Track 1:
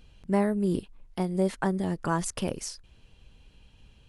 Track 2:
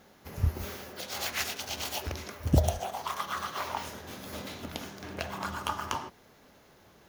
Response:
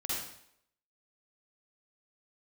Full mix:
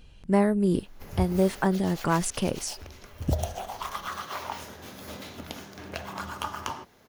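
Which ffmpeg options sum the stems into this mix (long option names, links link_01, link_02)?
-filter_complex "[0:a]volume=3dB[link_01];[1:a]adelay=750,volume=6.5dB,afade=type=out:start_time=1.65:duration=0.22:silence=0.446684,afade=type=in:start_time=2.98:duration=0.61:silence=0.375837[link_02];[link_01][link_02]amix=inputs=2:normalize=0"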